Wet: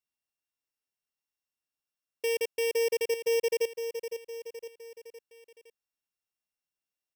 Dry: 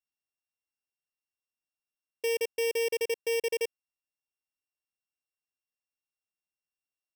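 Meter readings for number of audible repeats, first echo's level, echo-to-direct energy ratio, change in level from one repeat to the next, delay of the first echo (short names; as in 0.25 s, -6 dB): 4, -9.5 dB, -8.0 dB, -5.5 dB, 0.511 s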